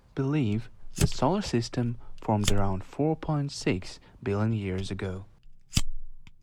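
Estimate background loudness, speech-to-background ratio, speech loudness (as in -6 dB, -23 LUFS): -32.5 LUFS, 2.5 dB, -30.0 LUFS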